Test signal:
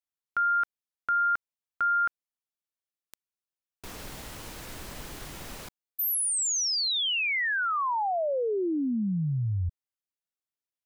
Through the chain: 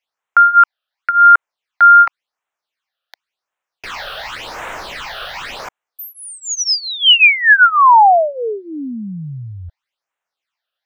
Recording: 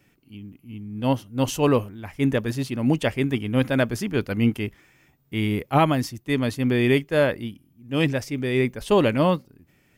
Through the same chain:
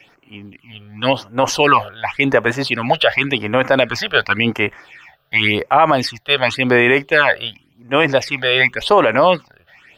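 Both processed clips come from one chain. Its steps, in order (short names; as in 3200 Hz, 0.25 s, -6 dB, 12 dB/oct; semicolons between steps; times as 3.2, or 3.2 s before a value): phaser stages 8, 0.91 Hz, lowest notch 270–4600 Hz; three-band isolator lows -23 dB, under 600 Hz, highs -22 dB, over 4300 Hz; maximiser +23.5 dB; gain -1 dB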